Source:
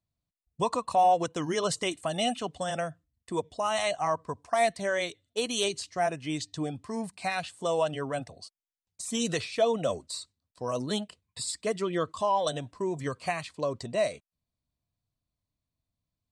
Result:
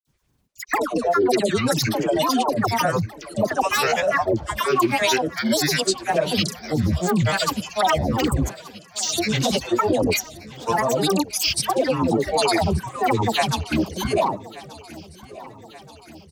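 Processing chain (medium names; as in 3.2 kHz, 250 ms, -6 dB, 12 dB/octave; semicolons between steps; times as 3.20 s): reverse; compression 12:1, threshold -37 dBFS, peak gain reduction 18.5 dB; reverse; Chebyshev shaper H 7 -36 dB, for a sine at -26 dBFS; phase dispersion lows, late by 146 ms, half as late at 930 Hz; granulator 100 ms, grains 20 per s, pitch spread up and down by 12 st; on a send: feedback delay 1180 ms, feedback 59%, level -19.5 dB; on the sum: loudness maximiser +29.5 dB; trim -7.5 dB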